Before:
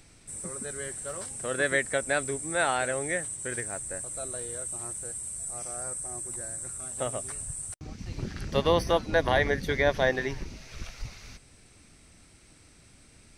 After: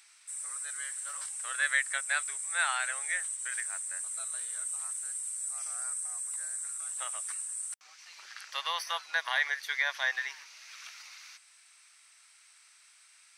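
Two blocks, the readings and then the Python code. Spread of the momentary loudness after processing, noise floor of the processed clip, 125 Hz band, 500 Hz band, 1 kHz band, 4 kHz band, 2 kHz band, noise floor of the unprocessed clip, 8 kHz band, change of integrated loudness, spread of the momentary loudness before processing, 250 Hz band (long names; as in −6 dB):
17 LU, −60 dBFS, below −40 dB, −23.0 dB, −6.0 dB, 0.0 dB, 0.0 dB, −56 dBFS, 0.0 dB, −2.5 dB, 15 LU, below −40 dB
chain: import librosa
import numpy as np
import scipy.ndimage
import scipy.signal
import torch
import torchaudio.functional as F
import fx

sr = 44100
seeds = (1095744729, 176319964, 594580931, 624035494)

y = scipy.signal.sosfilt(scipy.signal.butter(4, 1100.0, 'highpass', fs=sr, output='sos'), x)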